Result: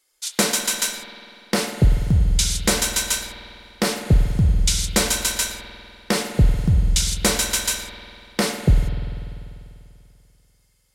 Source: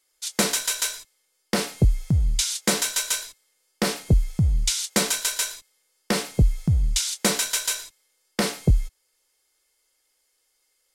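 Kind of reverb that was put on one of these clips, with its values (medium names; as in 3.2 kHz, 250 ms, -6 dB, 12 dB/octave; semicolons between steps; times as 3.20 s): spring tank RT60 2.6 s, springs 49 ms, chirp 20 ms, DRR 6 dB; trim +2.5 dB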